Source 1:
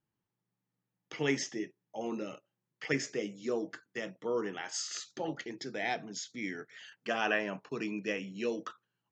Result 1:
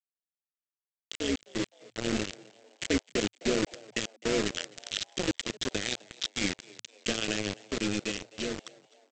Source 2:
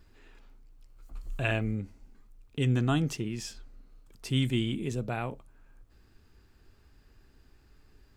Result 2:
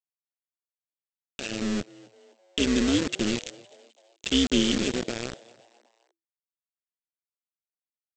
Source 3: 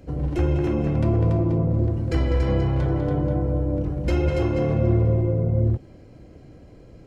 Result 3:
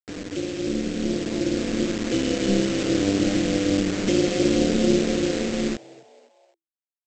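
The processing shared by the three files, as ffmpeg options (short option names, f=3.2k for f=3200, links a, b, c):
-filter_complex "[0:a]afftfilt=real='re*between(b*sr/4096,180,3900)':imag='im*between(b*sr/4096,180,3900)':win_size=4096:overlap=0.75,acrossover=split=400[a][b];[b]acompressor=threshold=-43dB:ratio=4[c];[a][c]amix=inputs=2:normalize=0,aexciter=amount=5.5:drive=2.7:freq=3k,afftfilt=real='re*gte(hypot(re,im),0.00562)':imag='im*gte(hypot(re,im),0.00562)':win_size=1024:overlap=0.75,bandreject=f=770:w=16,aresample=16000,acrusher=bits=5:mix=0:aa=0.000001,aresample=44100,dynaudnorm=f=390:g=9:m=8dB,equalizer=f=910:w=1.3:g=-11,tremolo=f=200:d=0.667,asplit=4[d][e][f][g];[e]adelay=257,afreqshift=110,volume=-22.5dB[h];[f]adelay=514,afreqshift=220,volume=-28.5dB[i];[g]adelay=771,afreqshift=330,volume=-34.5dB[j];[d][h][i][j]amix=inputs=4:normalize=0,volume=4.5dB"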